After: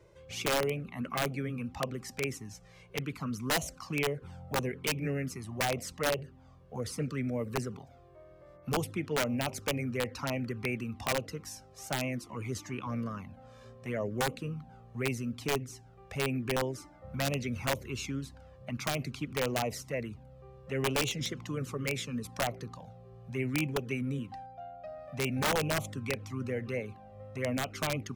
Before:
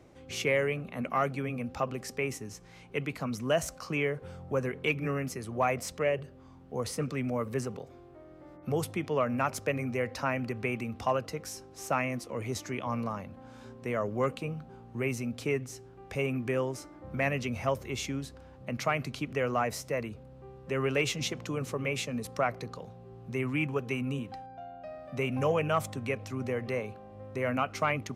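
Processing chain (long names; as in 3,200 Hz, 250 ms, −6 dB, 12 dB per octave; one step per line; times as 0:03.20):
flanger swept by the level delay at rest 2.1 ms, full sweep at −25.5 dBFS
wrap-around overflow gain 22.5 dB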